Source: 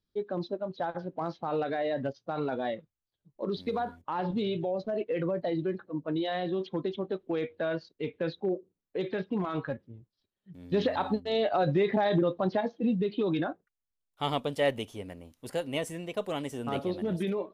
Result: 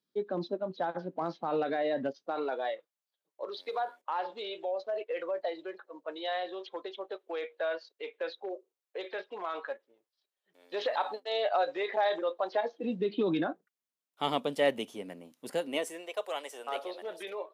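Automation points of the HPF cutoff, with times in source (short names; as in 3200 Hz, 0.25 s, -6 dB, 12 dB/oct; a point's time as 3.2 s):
HPF 24 dB/oct
2.03 s 180 Hz
2.7 s 500 Hz
12.47 s 500 Hz
13.21 s 180 Hz
15.54 s 180 Hz
16.15 s 510 Hz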